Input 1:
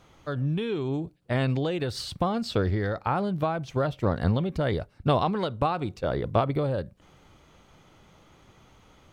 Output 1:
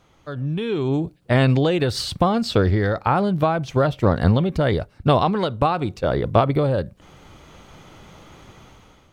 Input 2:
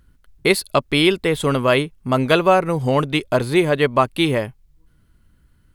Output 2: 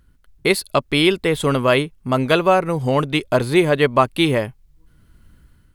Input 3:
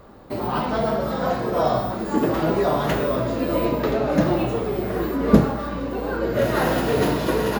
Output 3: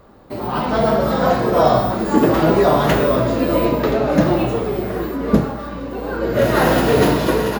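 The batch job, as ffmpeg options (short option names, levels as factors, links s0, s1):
-af "dynaudnorm=f=280:g=5:m=3.98,volume=0.891"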